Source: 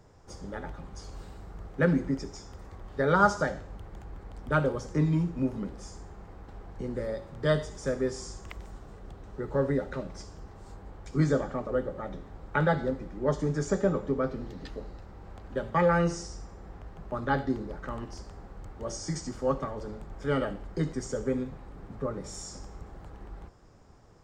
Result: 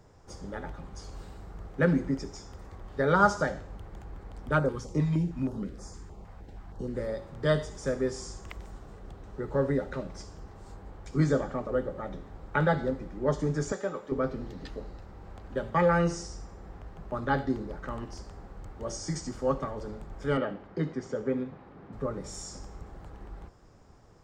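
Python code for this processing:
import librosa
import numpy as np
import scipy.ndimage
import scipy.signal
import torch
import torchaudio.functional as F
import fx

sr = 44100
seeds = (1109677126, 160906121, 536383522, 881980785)

y = fx.filter_held_notch(x, sr, hz=6.4, low_hz=340.0, high_hz=3000.0, at=(4.58, 6.93), fade=0.02)
y = fx.highpass(y, sr, hz=860.0, slope=6, at=(13.72, 14.12))
y = fx.bandpass_edges(y, sr, low_hz=130.0, high_hz=3400.0, at=(20.37, 21.93))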